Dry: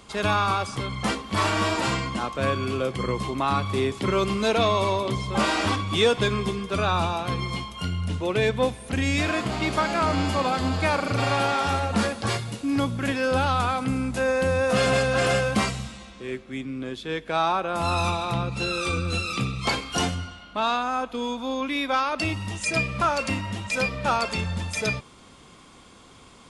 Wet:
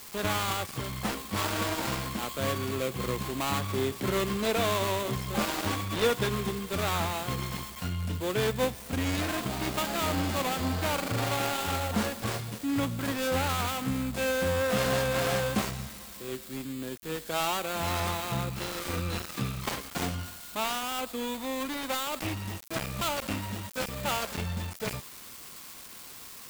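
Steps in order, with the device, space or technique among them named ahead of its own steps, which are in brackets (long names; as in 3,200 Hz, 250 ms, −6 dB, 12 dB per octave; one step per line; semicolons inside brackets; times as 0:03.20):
budget class-D amplifier (gap after every zero crossing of 0.24 ms; spike at every zero crossing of −23 dBFS)
level −4.5 dB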